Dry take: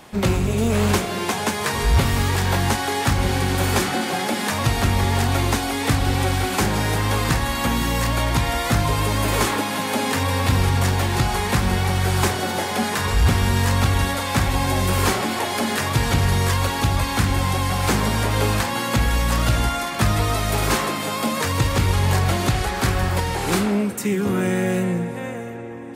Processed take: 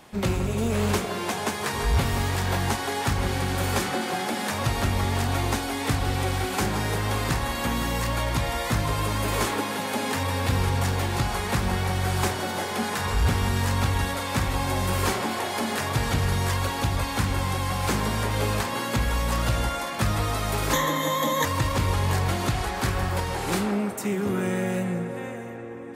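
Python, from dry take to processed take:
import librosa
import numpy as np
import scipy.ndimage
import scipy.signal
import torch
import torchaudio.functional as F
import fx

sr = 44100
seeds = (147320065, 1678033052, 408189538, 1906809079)

p1 = fx.ripple_eq(x, sr, per_octave=1.1, db=17, at=(20.73, 21.45))
p2 = p1 + fx.echo_wet_bandpass(p1, sr, ms=170, feedback_pct=75, hz=790.0, wet_db=-8.0, dry=0)
y = p2 * librosa.db_to_amplitude(-5.5)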